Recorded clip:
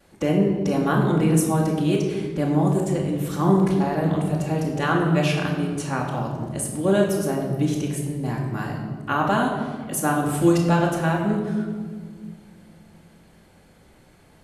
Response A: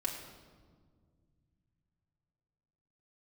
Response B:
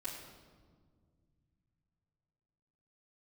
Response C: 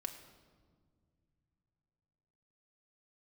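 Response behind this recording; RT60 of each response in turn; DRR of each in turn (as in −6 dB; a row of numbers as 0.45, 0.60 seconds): B; 1.8 s, 1.8 s, non-exponential decay; −2.5, −10.5, 3.5 decibels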